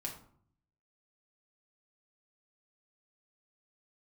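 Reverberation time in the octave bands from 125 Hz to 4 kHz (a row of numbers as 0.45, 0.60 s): 0.95, 0.80, 0.60, 0.60, 0.40, 0.30 s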